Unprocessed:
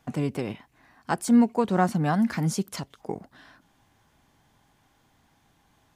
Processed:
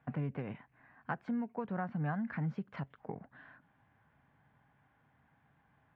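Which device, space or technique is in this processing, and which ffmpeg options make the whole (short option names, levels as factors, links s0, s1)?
bass amplifier: -af "acompressor=threshold=0.0355:ratio=4,highpass=61,equalizer=f=140:t=q:w=4:g=6,equalizer=f=350:t=q:w=4:g=-7,equalizer=f=1600:t=q:w=4:g=5,lowpass=f=2400:w=0.5412,lowpass=f=2400:w=1.3066,volume=0.501"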